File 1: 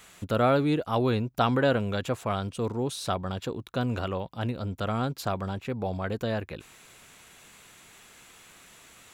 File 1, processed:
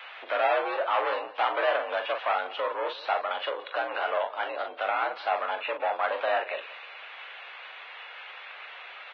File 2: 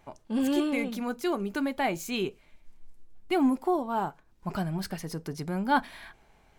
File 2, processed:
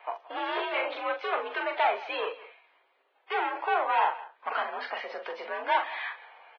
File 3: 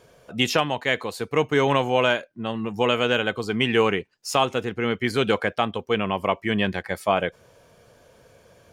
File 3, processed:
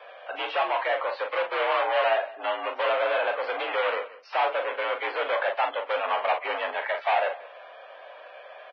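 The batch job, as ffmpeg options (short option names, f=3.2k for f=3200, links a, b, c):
-filter_complex "[0:a]acrossover=split=1200[a][b];[a]aeval=exprs='(tanh(25.1*val(0)+0.2)-tanh(0.2))/25.1':c=same[c];[b]acompressor=threshold=-39dB:ratio=8[d];[c][d]amix=inputs=2:normalize=0,aeval=exprs='0.1*sin(PI/2*2.24*val(0)/0.1)':c=same,asplit=2[e][f];[f]adelay=41,volume=-6.5dB[g];[e][g]amix=inputs=2:normalize=0,aecho=1:1:175:0.119,highpass=f=500:t=q:w=0.5412,highpass=f=500:t=q:w=1.307,lowpass=f=3.2k:t=q:w=0.5176,lowpass=f=3.2k:t=q:w=0.7071,lowpass=f=3.2k:t=q:w=1.932,afreqshift=62" -ar 16000 -c:a libvorbis -b:a 16k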